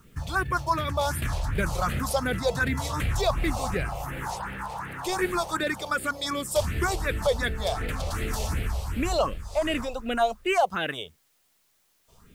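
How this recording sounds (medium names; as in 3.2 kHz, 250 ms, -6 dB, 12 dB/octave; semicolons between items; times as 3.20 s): phasing stages 4, 2.7 Hz, lowest notch 260–1000 Hz; a quantiser's noise floor 12-bit, dither triangular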